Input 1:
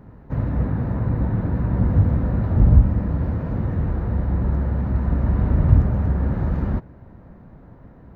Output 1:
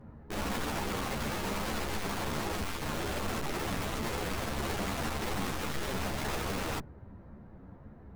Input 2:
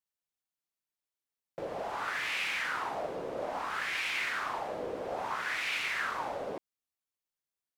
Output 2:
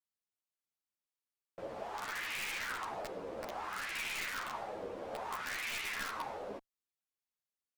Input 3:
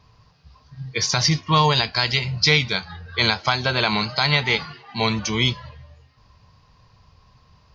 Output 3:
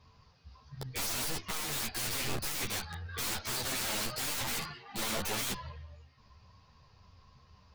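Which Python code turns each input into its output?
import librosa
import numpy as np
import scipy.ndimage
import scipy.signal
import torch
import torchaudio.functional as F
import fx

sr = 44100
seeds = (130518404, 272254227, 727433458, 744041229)

y = fx.tube_stage(x, sr, drive_db=21.0, bias=0.55)
y = (np.mod(10.0 ** (27.0 / 20.0) * y + 1.0, 2.0) - 1.0) / 10.0 ** (27.0 / 20.0)
y = fx.ensemble(y, sr)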